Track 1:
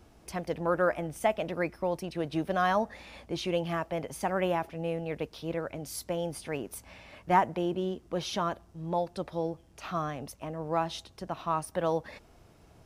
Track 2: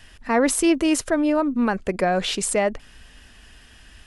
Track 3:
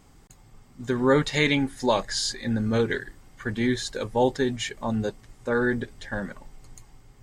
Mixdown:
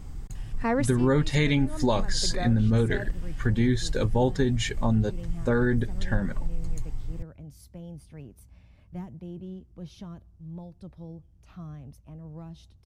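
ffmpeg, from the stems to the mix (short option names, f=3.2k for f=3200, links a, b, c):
-filter_complex "[0:a]bass=f=250:g=14,treble=f=4k:g=2,acrossover=split=450|3000[a][b][c];[b]acompressor=threshold=-34dB:ratio=6[d];[a][d][c]amix=inputs=3:normalize=0,adelay=1650,volume=-18dB[e];[1:a]adelay=350,volume=-6dB[f];[2:a]lowshelf=f=150:g=8.5,volume=2dB,asplit=2[g][h];[h]apad=whole_len=194807[i];[f][i]sidechaincompress=threshold=-29dB:ratio=8:attack=16:release=421[j];[e][j][g]amix=inputs=3:normalize=0,lowshelf=f=170:g=10.5,acompressor=threshold=-21dB:ratio=3"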